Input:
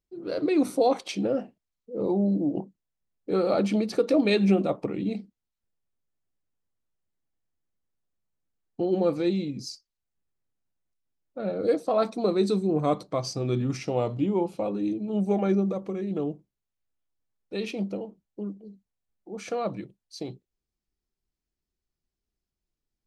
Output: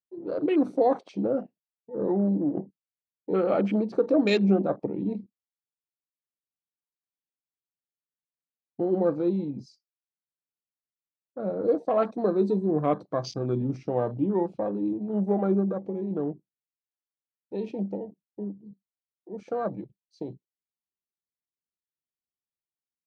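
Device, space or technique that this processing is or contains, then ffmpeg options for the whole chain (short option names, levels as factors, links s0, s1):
over-cleaned archive recording: -af "highpass=110,lowpass=5700,afwtdn=0.0126"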